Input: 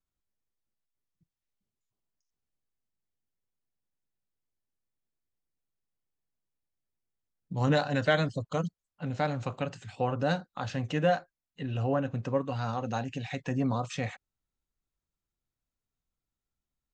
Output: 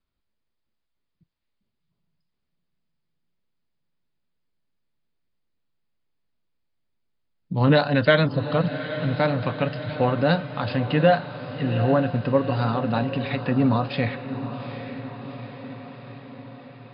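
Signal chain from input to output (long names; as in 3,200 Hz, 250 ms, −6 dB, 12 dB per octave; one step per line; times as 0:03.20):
Chebyshev low-pass filter 5,000 Hz, order 10
parametric band 230 Hz +3.5 dB 0.35 octaves
notch filter 770 Hz, Q 13
feedback delay with all-pass diffusion 805 ms, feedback 63%, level −11 dB
level +8.5 dB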